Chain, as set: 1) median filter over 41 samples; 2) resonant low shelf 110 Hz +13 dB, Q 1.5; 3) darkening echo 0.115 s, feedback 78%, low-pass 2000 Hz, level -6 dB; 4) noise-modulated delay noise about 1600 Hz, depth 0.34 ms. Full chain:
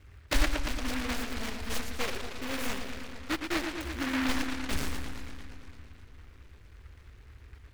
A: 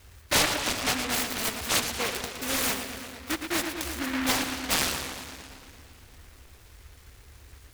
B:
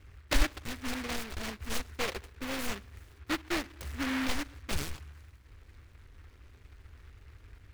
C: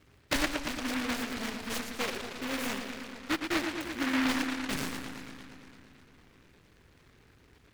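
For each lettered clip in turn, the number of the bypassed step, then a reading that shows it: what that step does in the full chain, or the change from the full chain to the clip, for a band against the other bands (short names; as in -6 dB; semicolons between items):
1, 8 kHz band +7.5 dB; 3, crest factor change +2.5 dB; 2, 125 Hz band -7.5 dB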